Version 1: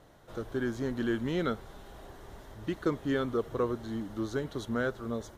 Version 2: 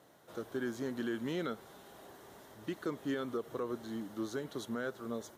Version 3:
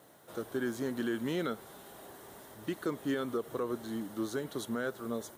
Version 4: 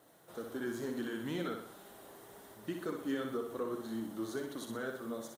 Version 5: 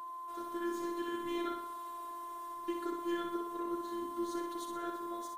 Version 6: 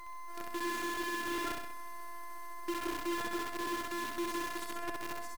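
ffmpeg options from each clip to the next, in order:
-af "highpass=170,highshelf=f=8.5k:g=9,alimiter=limit=-23.5dB:level=0:latency=1:release=113,volume=-3.5dB"
-af "aexciter=amount=2.5:drive=2.7:freq=8.3k,volume=3dB"
-af "flanger=delay=2.5:depth=4.1:regen=-37:speed=2:shape=triangular,aecho=1:1:62|124|186|248|310|372:0.531|0.25|0.117|0.0551|0.0259|0.0122,volume=-1dB"
-af "aeval=exprs='val(0)+0.00794*sin(2*PI*980*n/s)':c=same,afftfilt=real='hypot(re,im)*cos(PI*b)':imag='0':win_size=512:overlap=0.75,volume=2.5dB"
-af "acrusher=bits=7:dc=4:mix=0:aa=0.000001,aecho=1:1:65|130|195|260|325|390:0.668|0.321|0.154|0.0739|0.0355|0.017"

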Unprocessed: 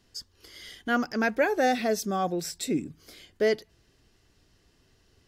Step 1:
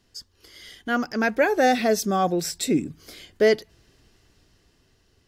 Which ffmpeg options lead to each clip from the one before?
-af "dynaudnorm=f=290:g=9:m=6dB"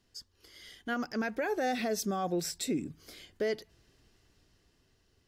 -af "alimiter=limit=-16.5dB:level=0:latency=1:release=76,volume=-7dB"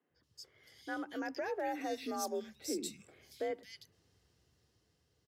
-filter_complex "[0:a]afreqshift=51,acrossover=split=190|2400[a][b][c];[a]adelay=90[d];[c]adelay=230[e];[d][b][e]amix=inputs=3:normalize=0,volume=-5.5dB"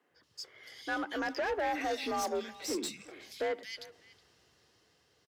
-filter_complex "[0:a]asplit=2[a][b];[b]highpass=f=720:p=1,volume=18dB,asoftclip=type=tanh:threshold=-24.5dB[c];[a][c]amix=inputs=2:normalize=0,lowpass=f=4.1k:p=1,volume=-6dB,asplit=2[d][e];[e]adelay=370,highpass=300,lowpass=3.4k,asoftclip=type=hard:threshold=-35.5dB,volume=-15dB[f];[d][f]amix=inputs=2:normalize=0"

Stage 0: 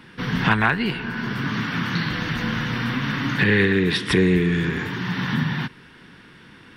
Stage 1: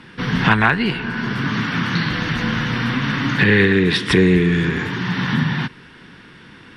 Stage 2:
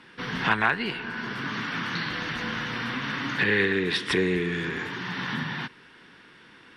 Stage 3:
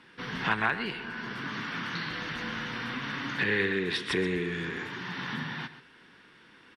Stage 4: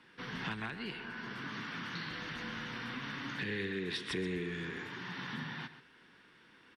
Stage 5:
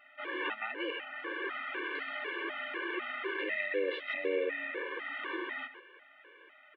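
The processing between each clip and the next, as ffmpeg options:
-af "lowpass=9.7k,volume=4dB"
-af "bass=f=250:g=-10,treble=f=4k:g=0,volume=-7dB"
-af "aecho=1:1:129:0.211,volume=-4.5dB"
-filter_complex "[0:a]acrossover=split=350|3000[a][b][c];[b]acompressor=threshold=-35dB:ratio=6[d];[a][d][c]amix=inputs=3:normalize=0,volume=-5.5dB"
-af "highpass=f=240:t=q:w=0.5412,highpass=f=240:t=q:w=1.307,lowpass=f=2.8k:t=q:w=0.5176,lowpass=f=2.8k:t=q:w=0.7071,lowpass=f=2.8k:t=q:w=1.932,afreqshift=110,afftfilt=real='re*gt(sin(2*PI*2*pts/sr)*(1-2*mod(floor(b*sr/1024/300),2)),0)':imag='im*gt(sin(2*PI*2*pts/sr)*(1-2*mod(floor(b*sr/1024/300),2)),0)':win_size=1024:overlap=0.75,volume=8.5dB"

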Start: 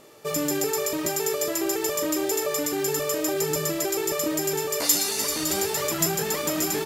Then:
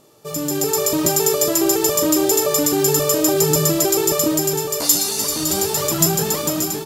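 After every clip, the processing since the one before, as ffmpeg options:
-af "equalizer=f=125:t=o:w=1:g=4,equalizer=f=500:t=o:w=1:g=-3,equalizer=f=2k:t=o:w=1:g=-9,dynaudnorm=f=250:g=5:m=12dB"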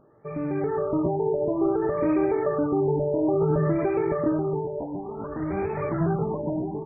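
-af "lowshelf=f=130:g=6,afftfilt=real='re*lt(b*sr/1024,980*pow(2600/980,0.5+0.5*sin(2*PI*0.57*pts/sr)))':imag='im*lt(b*sr/1024,980*pow(2600/980,0.5+0.5*sin(2*PI*0.57*pts/sr)))':win_size=1024:overlap=0.75,volume=-5dB"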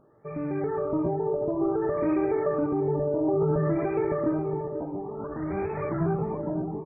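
-filter_complex "[0:a]acontrast=33,asplit=2[a][b];[b]adelay=487,lowpass=f=1.4k:p=1,volume=-12dB,asplit=2[c][d];[d]adelay=487,lowpass=f=1.4k:p=1,volume=0.24,asplit=2[e][f];[f]adelay=487,lowpass=f=1.4k:p=1,volume=0.24[g];[a][c][e][g]amix=inputs=4:normalize=0,volume=-7.5dB"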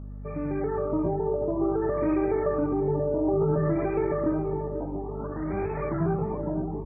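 -af "aeval=exprs='val(0)+0.0141*(sin(2*PI*50*n/s)+sin(2*PI*2*50*n/s)/2+sin(2*PI*3*50*n/s)/3+sin(2*PI*4*50*n/s)/4+sin(2*PI*5*50*n/s)/5)':c=same"

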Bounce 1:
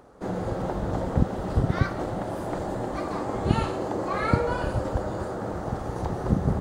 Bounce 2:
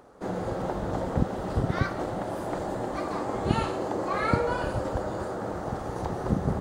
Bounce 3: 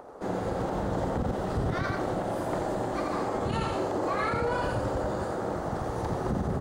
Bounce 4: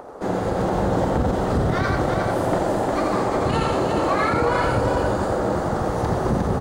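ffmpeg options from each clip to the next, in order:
-af "lowshelf=f=180:g=-5.5"
-filter_complex "[0:a]acrossover=split=390|1100[a][b][c];[b]acompressor=mode=upward:threshold=-40dB:ratio=2.5[d];[a][d][c]amix=inputs=3:normalize=0,aecho=1:1:86:0.596,alimiter=limit=-20dB:level=0:latency=1:release=32"
-af "aecho=1:1:357:0.562,volume=7.5dB"

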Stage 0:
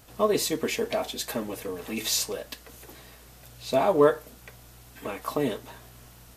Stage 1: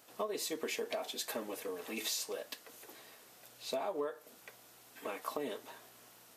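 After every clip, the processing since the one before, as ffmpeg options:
-af "highpass=310,acompressor=threshold=-28dB:ratio=12,volume=-5.5dB"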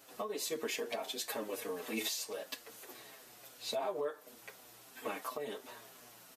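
-filter_complex "[0:a]alimiter=level_in=4.5dB:limit=-24dB:level=0:latency=1:release=430,volume=-4.5dB,asplit=2[a][b];[b]adelay=7,afreqshift=-2.9[c];[a][c]amix=inputs=2:normalize=1,volume=5.5dB"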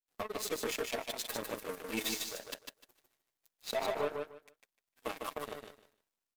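-filter_complex "[0:a]aeval=exprs='0.0596*(cos(1*acos(clip(val(0)/0.0596,-1,1)))-cos(1*PI/2))+0.00422*(cos(2*acos(clip(val(0)/0.0596,-1,1)))-cos(2*PI/2))+0.00119*(cos(5*acos(clip(val(0)/0.0596,-1,1)))-cos(5*PI/2))+0.00944*(cos(7*acos(clip(val(0)/0.0596,-1,1)))-cos(7*PI/2))':c=same,asplit=2[a][b];[b]aecho=0:1:151|302|453:0.596|0.119|0.0238[c];[a][c]amix=inputs=2:normalize=0,volume=1.5dB"

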